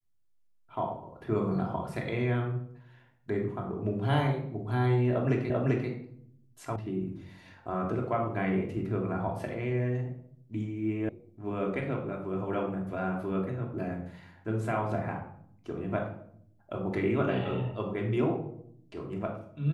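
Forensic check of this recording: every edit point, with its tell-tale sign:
5.50 s: repeat of the last 0.39 s
6.76 s: sound stops dead
11.09 s: sound stops dead

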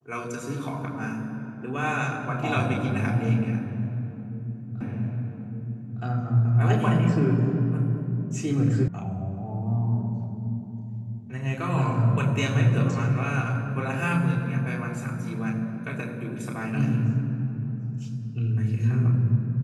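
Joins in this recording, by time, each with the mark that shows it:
4.81 s: repeat of the last 1.21 s
8.88 s: sound stops dead

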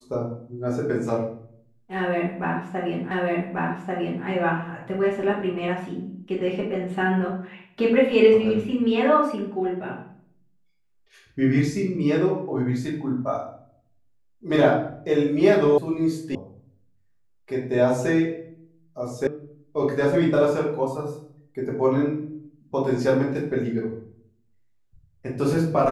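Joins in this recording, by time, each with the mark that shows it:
3.11 s: repeat of the last 1.14 s
15.78 s: sound stops dead
16.35 s: sound stops dead
19.27 s: sound stops dead

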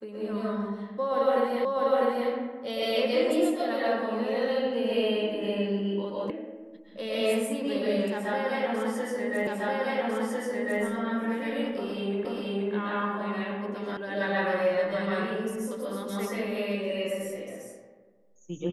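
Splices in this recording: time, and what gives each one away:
1.65 s: repeat of the last 0.65 s
6.30 s: sound stops dead
9.47 s: repeat of the last 1.35 s
12.25 s: repeat of the last 0.48 s
13.97 s: sound stops dead

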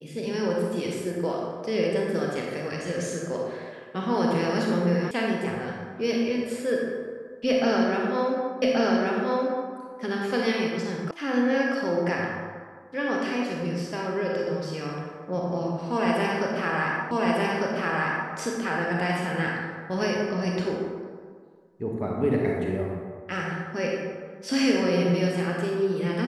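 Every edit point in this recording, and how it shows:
5.11 s: sound stops dead
8.62 s: repeat of the last 1.13 s
11.11 s: sound stops dead
17.11 s: repeat of the last 1.2 s

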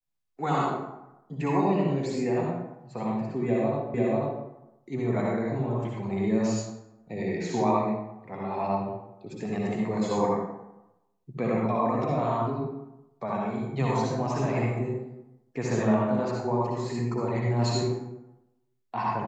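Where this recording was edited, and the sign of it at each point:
3.94 s: repeat of the last 0.49 s

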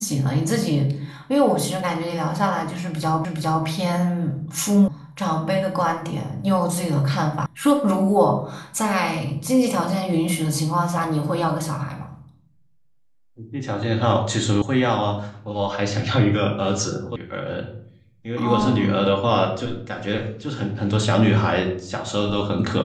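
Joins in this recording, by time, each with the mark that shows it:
3.25 s: repeat of the last 0.41 s
4.88 s: sound stops dead
7.46 s: sound stops dead
14.62 s: sound stops dead
17.16 s: sound stops dead

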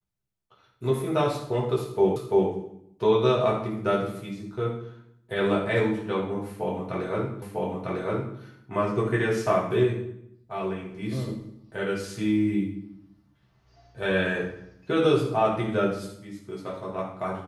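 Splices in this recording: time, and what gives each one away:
2.16 s: repeat of the last 0.34 s
7.42 s: repeat of the last 0.95 s

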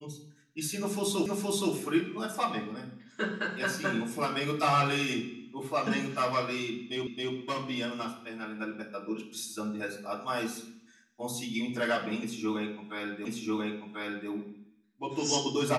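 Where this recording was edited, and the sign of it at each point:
1.26 s: repeat of the last 0.47 s
7.07 s: repeat of the last 0.27 s
13.25 s: repeat of the last 1.04 s

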